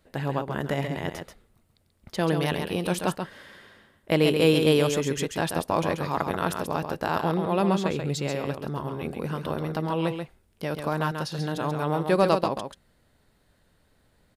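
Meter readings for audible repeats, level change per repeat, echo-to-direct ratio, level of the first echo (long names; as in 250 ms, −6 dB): 1, repeats not evenly spaced, −6.5 dB, −6.5 dB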